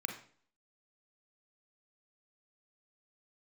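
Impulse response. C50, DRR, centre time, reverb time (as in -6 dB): 7.0 dB, 3.5 dB, 20 ms, 0.50 s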